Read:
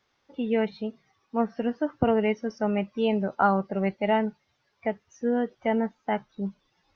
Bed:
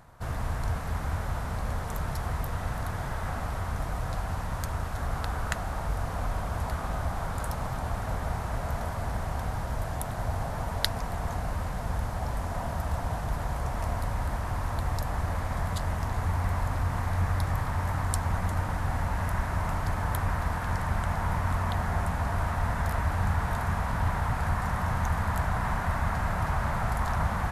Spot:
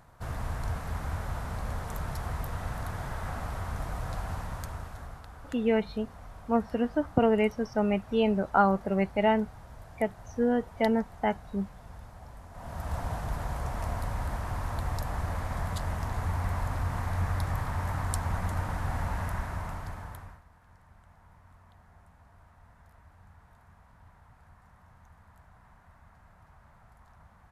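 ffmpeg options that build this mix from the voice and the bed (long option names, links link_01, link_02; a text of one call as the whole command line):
ffmpeg -i stem1.wav -i stem2.wav -filter_complex "[0:a]adelay=5150,volume=-0.5dB[link_01];[1:a]volume=10.5dB,afade=type=out:start_time=4.33:duration=0.9:silence=0.223872,afade=type=in:start_time=12.52:duration=0.45:silence=0.211349,afade=type=out:start_time=19.11:duration=1.31:silence=0.0473151[link_02];[link_01][link_02]amix=inputs=2:normalize=0" out.wav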